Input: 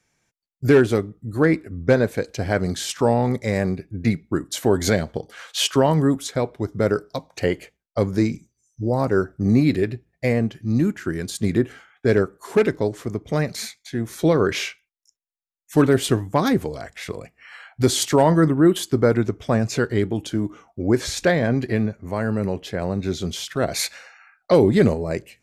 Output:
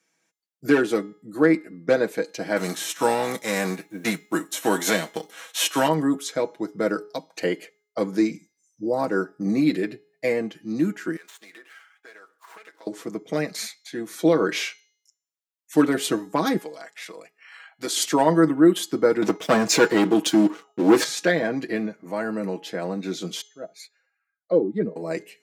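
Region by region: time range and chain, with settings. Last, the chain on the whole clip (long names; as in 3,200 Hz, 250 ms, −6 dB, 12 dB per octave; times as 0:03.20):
0:02.56–0:05.87: spectral envelope flattened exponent 0.6 + notch filter 4,700 Hz, Q 6
0:11.16–0:12.87: running median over 9 samples + high-pass filter 1,100 Hz + downward compressor 12 to 1, threshold −40 dBFS
0:16.58–0:17.97: low-shelf EQ 370 Hz −11.5 dB + amplitude modulation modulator 52 Hz, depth 25%
0:19.22–0:21.04: leveller curve on the samples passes 3 + low-shelf EQ 130 Hz −5 dB
0:23.41–0:24.96: expanding power law on the bin magnitudes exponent 1.6 + expander for the loud parts 2.5 to 1, over −29 dBFS
whole clip: Chebyshev high-pass filter 220 Hz, order 3; comb filter 6.2 ms; hum removal 418.6 Hz, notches 17; level −2.5 dB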